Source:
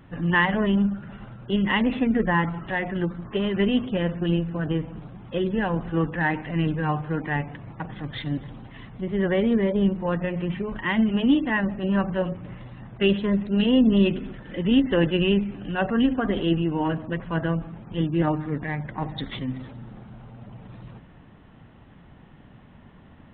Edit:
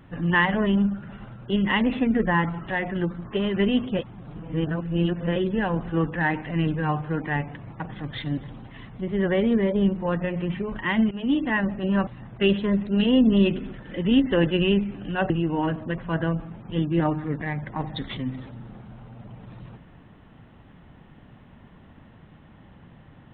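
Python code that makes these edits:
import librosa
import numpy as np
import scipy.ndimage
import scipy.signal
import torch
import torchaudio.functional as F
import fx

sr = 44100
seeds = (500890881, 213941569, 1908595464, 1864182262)

y = fx.edit(x, sr, fx.reverse_span(start_s=3.99, length_s=1.37),
    fx.fade_in_from(start_s=11.11, length_s=0.35, floor_db=-14.5),
    fx.cut(start_s=12.07, length_s=0.6),
    fx.cut(start_s=15.9, length_s=0.62), tone=tone)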